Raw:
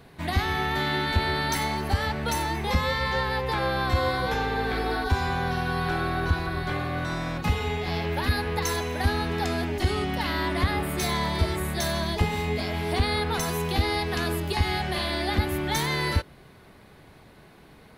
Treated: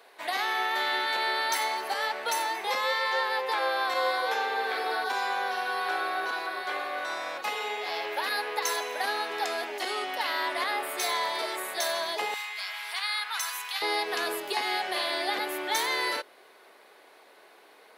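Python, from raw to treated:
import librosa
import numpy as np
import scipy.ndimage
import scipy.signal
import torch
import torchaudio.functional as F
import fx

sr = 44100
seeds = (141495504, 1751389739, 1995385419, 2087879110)

y = fx.highpass(x, sr, hz=fx.steps((0.0, 470.0), (12.34, 1100.0), (13.82, 410.0)), slope=24)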